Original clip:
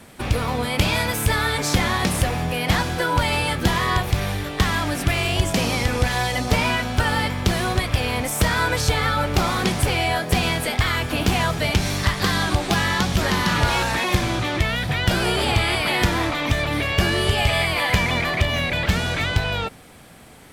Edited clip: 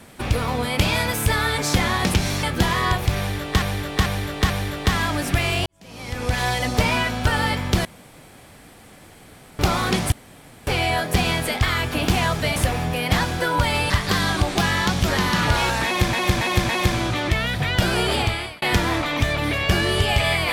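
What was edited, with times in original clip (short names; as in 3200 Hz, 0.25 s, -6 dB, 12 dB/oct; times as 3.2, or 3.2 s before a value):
2.14–3.48 swap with 11.74–12.03
4.23–4.67 loop, 4 plays
5.39–6.13 fade in quadratic
7.58–9.32 room tone
9.85 insert room tone 0.55 s
13.98–14.26 loop, 4 plays
15.44–15.91 fade out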